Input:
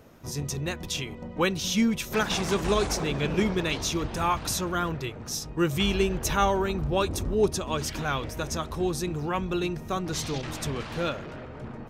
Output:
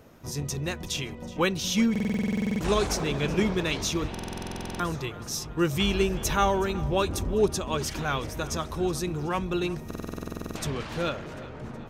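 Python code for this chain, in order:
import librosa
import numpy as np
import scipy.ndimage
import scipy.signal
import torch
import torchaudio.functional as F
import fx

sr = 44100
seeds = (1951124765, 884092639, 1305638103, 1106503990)

p1 = x + fx.echo_feedback(x, sr, ms=372, feedback_pct=56, wet_db=-19, dry=0)
y = fx.buffer_glitch(p1, sr, at_s=(1.91, 4.1, 9.86), block=2048, repeats=14)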